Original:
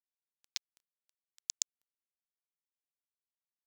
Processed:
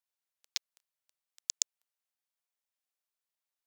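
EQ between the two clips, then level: steep high-pass 510 Hz; +3.5 dB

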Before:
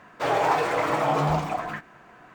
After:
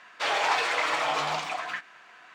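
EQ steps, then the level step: band-pass filter 3.8 kHz, Q 0.92; +8.0 dB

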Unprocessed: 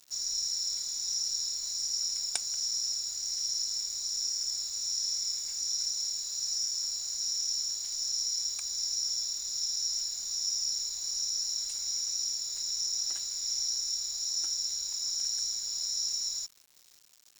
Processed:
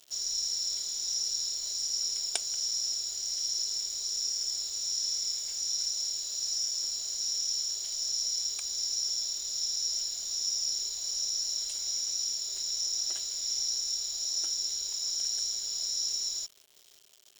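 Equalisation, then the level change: graphic EQ with 31 bands 400 Hz +10 dB, 630 Hz +8 dB, 3.15 kHz +10 dB; 0.0 dB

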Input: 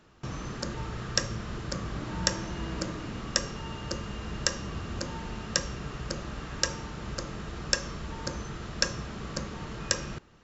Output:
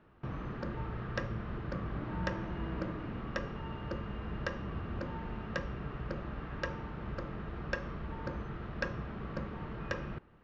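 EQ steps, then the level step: low-pass 2.3 kHz 12 dB/octave; distance through air 140 m; -2.5 dB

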